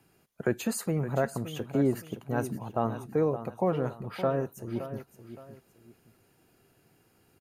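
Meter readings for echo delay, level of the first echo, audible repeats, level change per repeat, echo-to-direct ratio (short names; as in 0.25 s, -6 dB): 0.568 s, -12.0 dB, 2, -9.5 dB, -11.5 dB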